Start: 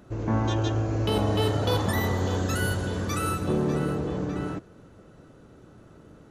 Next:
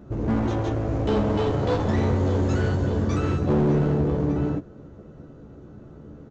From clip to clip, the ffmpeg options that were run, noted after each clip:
-filter_complex "[0:a]tiltshelf=f=970:g=7,aresample=16000,volume=19.5dB,asoftclip=hard,volume=-19.5dB,aresample=44100,asplit=2[a][b];[b]adelay=14,volume=-5dB[c];[a][c]amix=inputs=2:normalize=0"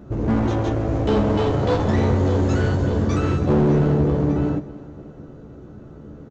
-af "aecho=1:1:306|612|918|1224:0.112|0.0561|0.0281|0.014,volume=3.5dB"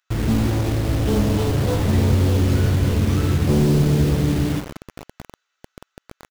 -filter_complex "[0:a]lowshelf=f=320:g=11.5,acrossover=split=1900[a][b];[a]acrusher=bits=3:mix=0:aa=0.000001[c];[b]dynaudnorm=f=110:g=9:m=3dB[d];[c][d]amix=inputs=2:normalize=0,volume=-7.5dB"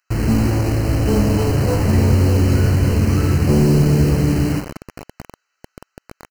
-af "asuperstop=centerf=3500:order=12:qfactor=3.9,volume=3dB"

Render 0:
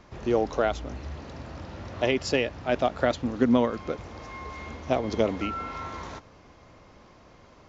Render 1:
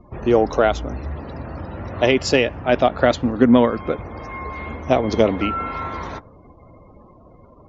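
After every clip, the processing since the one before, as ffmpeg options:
-af "acontrast=27,afftdn=nr=33:nf=-45,volume=3.5dB"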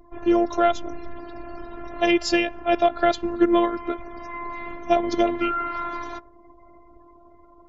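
-af "afftfilt=real='hypot(re,im)*cos(PI*b)':imag='0':win_size=512:overlap=0.75"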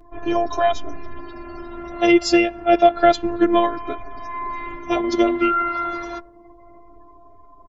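-filter_complex "[0:a]asplit=2[a][b];[b]adelay=7,afreqshift=-0.29[c];[a][c]amix=inputs=2:normalize=1,volume=6.5dB"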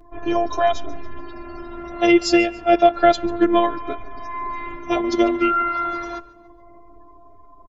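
-af "aecho=1:1:143|286|429:0.0891|0.0383|0.0165"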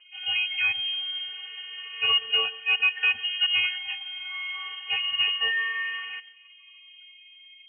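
-af "asoftclip=type=tanh:threshold=-10dB,lowpass=f=2.7k:t=q:w=0.5098,lowpass=f=2.7k:t=q:w=0.6013,lowpass=f=2.7k:t=q:w=0.9,lowpass=f=2.7k:t=q:w=2.563,afreqshift=-3200,volume=-6dB"

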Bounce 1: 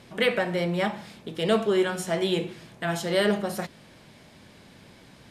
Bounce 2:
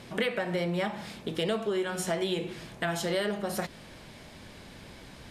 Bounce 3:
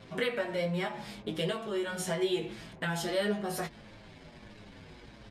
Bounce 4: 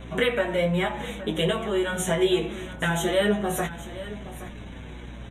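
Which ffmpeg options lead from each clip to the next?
-af "acompressor=threshold=-30dB:ratio=6,asubboost=boost=3:cutoff=71,volume=3.5dB"
-filter_complex "[0:a]asplit=2[a][b];[b]adelay=19,volume=-7dB[c];[a][c]amix=inputs=2:normalize=0,anlmdn=0.01,asplit=2[d][e];[e]adelay=7.2,afreqshift=-1.5[f];[d][f]amix=inputs=2:normalize=1"
-af "aeval=exprs='val(0)+0.00398*(sin(2*PI*60*n/s)+sin(2*PI*2*60*n/s)/2+sin(2*PI*3*60*n/s)/3+sin(2*PI*4*60*n/s)/4+sin(2*PI*5*60*n/s)/5)':c=same,asuperstop=centerf=4800:order=12:qfactor=2.5,aecho=1:1:821:0.178,volume=8dB"

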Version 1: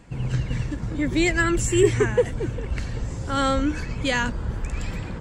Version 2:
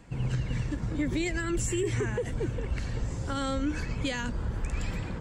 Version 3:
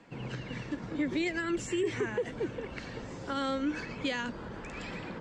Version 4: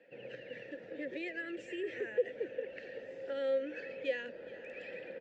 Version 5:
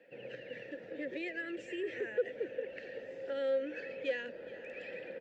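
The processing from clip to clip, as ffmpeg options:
-filter_complex "[0:a]alimiter=limit=-17.5dB:level=0:latency=1:release=77,acrossover=split=470|3000[a][b][c];[b]acompressor=threshold=-33dB:ratio=2.5[d];[a][d][c]amix=inputs=3:normalize=0,volume=-3dB"
-filter_complex "[0:a]acrossover=split=180 5900:gain=0.1 1 0.1[a][b][c];[a][b][c]amix=inputs=3:normalize=0"
-filter_complex "[0:a]asoftclip=type=hard:threshold=-24.5dB,asplit=3[a][b][c];[a]bandpass=f=530:t=q:w=8,volume=0dB[d];[b]bandpass=f=1.84k:t=q:w=8,volume=-6dB[e];[c]bandpass=f=2.48k:t=q:w=8,volume=-9dB[f];[d][e][f]amix=inputs=3:normalize=0,aecho=1:1:421:0.141,volume=5.5dB"
-af "asoftclip=type=tanh:threshold=-23.5dB,volume=1dB"

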